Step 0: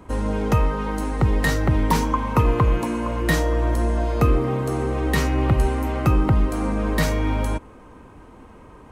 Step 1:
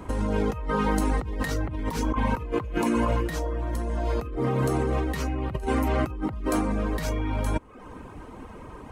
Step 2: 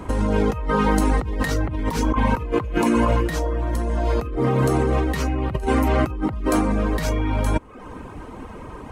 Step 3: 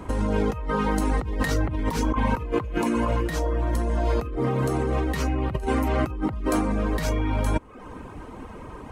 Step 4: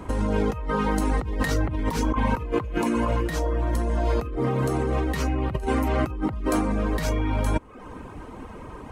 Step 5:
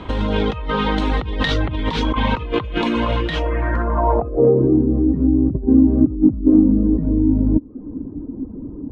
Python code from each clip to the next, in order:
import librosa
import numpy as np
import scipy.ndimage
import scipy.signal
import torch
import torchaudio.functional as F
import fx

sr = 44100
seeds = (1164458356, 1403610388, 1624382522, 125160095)

y1 = fx.dereverb_blind(x, sr, rt60_s=0.56)
y1 = fx.over_compress(y1, sr, threshold_db=-27.0, ratio=-1.0)
y2 = fx.high_shelf(y1, sr, hz=12000.0, db=-3.0)
y2 = F.gain(torch.from_numpy(y2), 5.5).numpy()
y3 = fx.rider(y2, sr, range_db=10, speed_s=0.5)
y3 = F.gain(torch.from_numpy(y3), -3.5).numpy()
y4 = y3
y5 = fx.tracing_dist(y4, sr, depth_ms=0.11)
y5 = fx.filter_sweep_lowpass(y5, sr, from_hz=3500.0, to_hz=280.0, start_s=3.28, end_s=4.79, q=4.8)
y5 = F.gain(torch.from_numpy(y5), 4.0).numpy()